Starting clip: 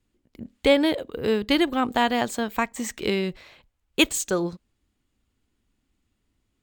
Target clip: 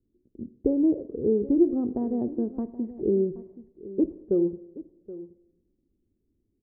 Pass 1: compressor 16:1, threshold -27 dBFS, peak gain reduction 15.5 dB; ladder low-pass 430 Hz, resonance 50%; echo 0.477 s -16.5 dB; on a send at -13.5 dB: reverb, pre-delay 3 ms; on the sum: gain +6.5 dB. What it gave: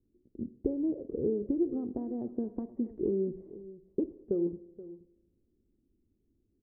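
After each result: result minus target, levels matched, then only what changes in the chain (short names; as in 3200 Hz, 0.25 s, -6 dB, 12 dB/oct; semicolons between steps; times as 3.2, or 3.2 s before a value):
compressor: peak gain reduction +10 dB; echo 0.298 s early
change: compressor 16:1, threshold -16.5 dBFS, peak gain reduction 6 dB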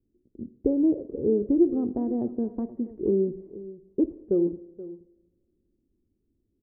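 echo 0.298 s early
change: echo 0.775 s -16.5 dB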